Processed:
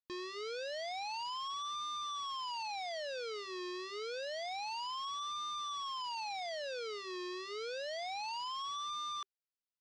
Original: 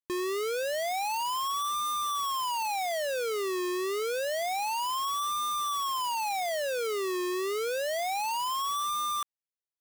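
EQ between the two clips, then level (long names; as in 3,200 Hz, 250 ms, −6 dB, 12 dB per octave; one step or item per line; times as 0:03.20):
transistor ladder low-pass 5,400 Hz, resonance 50%
notch filter 390 Hz, Q 12
−1.0 dB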